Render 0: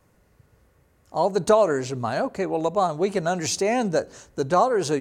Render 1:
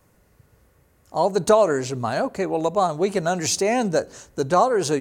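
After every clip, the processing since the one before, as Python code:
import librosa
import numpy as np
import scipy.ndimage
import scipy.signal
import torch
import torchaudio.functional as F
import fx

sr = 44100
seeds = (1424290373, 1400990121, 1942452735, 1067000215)

y = fx.high_shelf(x, sr, hz=8600.0, db=6.5)
y = y * 10.0 ** (1.5 / 20.0)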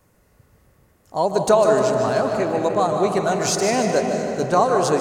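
y = fx.echo_feedback(x, sr, ms=152, feedback_pct=51, wet_db=-9.5)
y = fx.rev_freeverb(y, sr, rt60_s=3.7, hf_ratio=0.55, predelay_ms=105, drr_db=4.0)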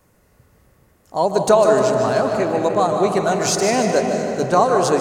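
y = fx.hum_notches(x, sr, base_hz=50, count=3)
y = y * 10.0 ** (2.0 / 20.0)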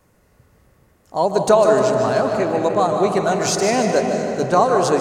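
y = fx.high_shelf(x, sr, hz=9300.0, db=-4.5)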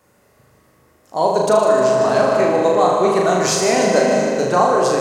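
y = fx.highpass(x, sr, hz=210.0, slope=6)
y = fx.rider(y, sr, range_db=10, speed_s=0.5)
y = fx.room_flutter(y, sr, wall_m=6.6, rt60_s=0.69)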